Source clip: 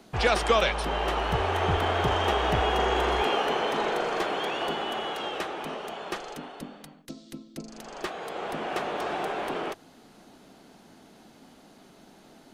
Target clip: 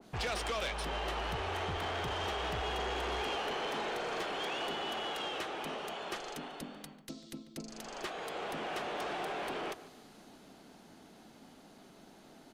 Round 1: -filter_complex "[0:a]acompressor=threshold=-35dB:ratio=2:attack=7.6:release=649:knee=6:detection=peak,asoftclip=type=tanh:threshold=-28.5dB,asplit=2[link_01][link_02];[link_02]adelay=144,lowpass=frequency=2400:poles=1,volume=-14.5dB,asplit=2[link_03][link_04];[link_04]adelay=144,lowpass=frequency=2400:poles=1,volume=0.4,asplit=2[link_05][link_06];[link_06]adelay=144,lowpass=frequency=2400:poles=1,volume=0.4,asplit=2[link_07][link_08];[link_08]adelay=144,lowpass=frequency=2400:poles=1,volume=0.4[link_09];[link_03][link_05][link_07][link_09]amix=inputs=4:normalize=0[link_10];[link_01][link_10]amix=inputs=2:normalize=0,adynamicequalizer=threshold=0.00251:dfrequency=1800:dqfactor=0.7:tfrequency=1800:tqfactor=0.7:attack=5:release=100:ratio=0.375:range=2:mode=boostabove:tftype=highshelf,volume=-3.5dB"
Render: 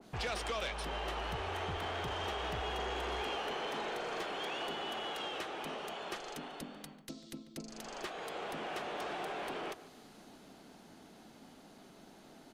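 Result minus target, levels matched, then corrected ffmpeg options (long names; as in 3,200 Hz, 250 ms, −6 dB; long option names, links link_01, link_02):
downward compressor: peak gain reduction +3 dB
-filter_complex "[0:a]acompressor=threshold=-28.5dB:ratio=2:attack=7.6:release=649:knee=6:detection=peak,asoftclip=type=tanh:threshold=-28.5dB,asplit=2[link_01][link_02];[link_02]adelay=144,lowpass=frequency=2400:poles=1,volume=-14.5dB,asplit=2[link_03][link_04];[link_04]adelay=144,lowpass=frequency=2400:poles=1,volume=0.4,asplit=2[link_05][link_06];[link_06]adelay=144,lowpass=frequency=2400:poles=1,volume=0.4,asplit=2[link_07][link_08];[link_08]adelay=144,lowpass=frequency=2400:poles=1,volume=0.4[link_09];[link_03][link_05][link_07][link_09]amix=inputs=4:normalize=0[link_10];[link_01][link_10]amix=inputs=2:normalize=0,adynamicequalizer=threshold=0.00251:dfrequency=1800:dqfactor=0.7:tfrequency=1800:tqfactor=0.7:attack=5:release=100:ratio=0.375:range=2:mode=boostabove:tftype=highshelf,volume=-3.5dB"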